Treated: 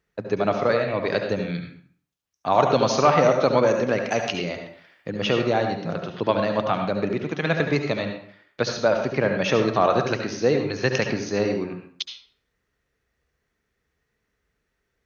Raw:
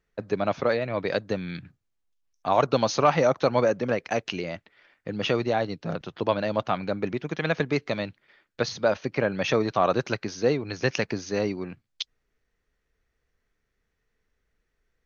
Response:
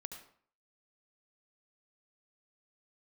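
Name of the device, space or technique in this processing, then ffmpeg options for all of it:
bathroom: -filter_complex "[0:a]asettb=1/sr,asplit=3[a][b][c];[a]atrim=end=3.684[d];[b]atrim=start=3.68:end=5.11,asetpts=PTS-STARTPTS,afade=t=in:d=0.004:c=qsin,afade=t=out:st=1.426:d=0.004:c=qsin,highshelf=f=6.2k:g=8.5[e];[c]atrim=start=5.106[f];[d][e]acrossfade=d=0.004:c1=hsin:c2=qsin[g];[g][f]acrossfade=d=0.004:c1=qsin:c2=hsin[h];[1:a]atrim=start_sample=2205[i];[h][i]afir=irnorm=-1:irlink=0,highpass=57,volume=7dB"

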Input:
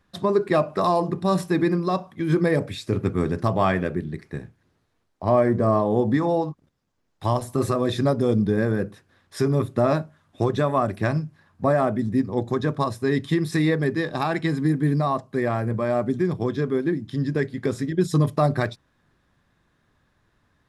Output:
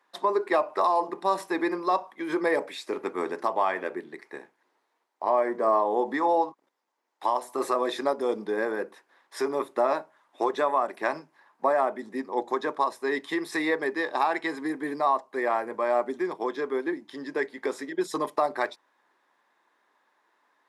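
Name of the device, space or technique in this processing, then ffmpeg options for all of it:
laptop speaker: -af "highpass=f=330:w=0.5412,highpass=f=330:w=1.3066,equalizer=f=920:t=o:w=0.57:g=11,equalizer=f=2k:t=o:w=0.45:g=5,alimiter=limit=-9.5dB:level=0:latency=1:release=330,volume=-3.5dB"

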